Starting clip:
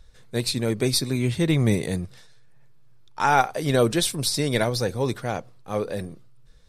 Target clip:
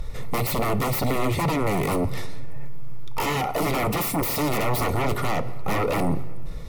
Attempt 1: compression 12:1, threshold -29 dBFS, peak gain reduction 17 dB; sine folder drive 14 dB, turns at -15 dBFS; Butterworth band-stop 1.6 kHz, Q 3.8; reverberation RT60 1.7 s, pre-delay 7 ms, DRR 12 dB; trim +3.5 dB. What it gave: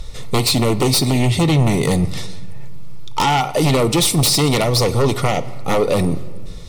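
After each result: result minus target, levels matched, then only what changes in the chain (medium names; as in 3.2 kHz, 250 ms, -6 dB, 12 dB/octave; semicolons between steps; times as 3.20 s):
sine folder: distortion -16 dB; 4 kHz band +6.0 dB
change: sine folder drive 14 dB, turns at -23 dBFS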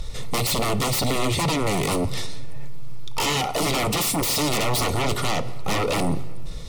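4 kHz band +7.5 dB
add after Butterworth band-stop: high-order bell 5.2 kHz -9.5 dB 2 oct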